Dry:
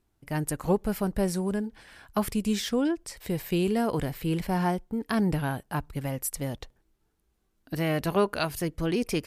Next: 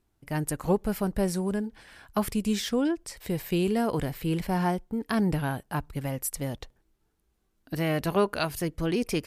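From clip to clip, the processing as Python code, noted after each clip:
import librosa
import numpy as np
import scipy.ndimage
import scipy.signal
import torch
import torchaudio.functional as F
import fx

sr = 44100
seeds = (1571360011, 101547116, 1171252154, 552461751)

y = x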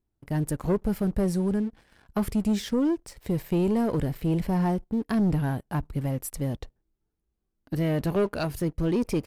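y = fx.tilt_shelf(x, sr, db=5.0, hz=730.0)
y = fx.leveller(y, sr, passes=2)
y = y * 10.0 ** (-7.0 / 20.0)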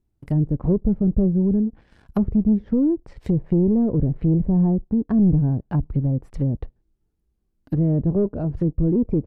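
y = fx.env_lowpass_down(x, sr, base_hz=500.0, full_db=-24.5)
y = fx.low_shelf(y, sr, hz=400.0, db=9.0)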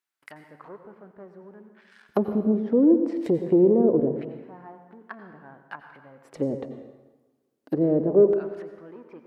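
y = fx.filter_lfo_highpass(x, sr, shape='square', hz=0.24, low_hz=400.0, high_hz=1500.0, q=1.6)
y = fx.rev_plate(y, sr, seeds[0], rt60_s=1.2, hf_ratio=0.8, predelay_ms=75, drr_db=8.0)
y = y * 10.0 ** (2.5 / 20.0)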